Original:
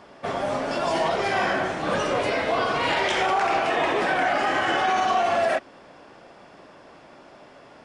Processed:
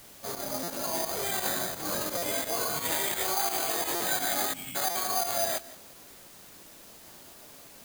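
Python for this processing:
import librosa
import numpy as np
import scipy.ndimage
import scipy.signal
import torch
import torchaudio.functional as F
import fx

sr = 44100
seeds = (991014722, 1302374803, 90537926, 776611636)

p1 = fx.chorus_voices(x, sr, voices=2, hz=0.34, base_ms=21, depth_ms=1.9, mix_pct=45)
p2 = fx.spec_erase(p1, sr, start_s=4.53, length_s=0.22, low_hz=280.0, high_hz=2100.0)
p3 = np.repeat(scipy.signal.resample_poly(p2, 1, 8), 8)[:len(p2)]
p4 = scipy.signal.lfilter([1.0, -0.8], [1.0], p3)
p5 = p4 + fx.echo_single(p4, sr, ms=171, db=-18.0, dry=0)
p6 = fx.volume_shaper(p5, sr, bpm=86, per_beat=2, depth_db=-11, release_ms=90.0, shape='fast start')
p7 = fx.hum_notches(p6, sr, base_hz=50, count=2)
p8 = fx.quant_dither(p7, sr, seeds[0], bits=8, dither='triangular')
p9 = p7 + F.gain(torch.from_numpy(p8), -4.0).numpy()
p10 = fx.low_shelf(p9, sr, hz=420.0, db=5.5)
y = fx.buffer_glitch(p10, sr, at_s=(0.63, 2.17, 3.95, 4.9), block=256, repeats=8)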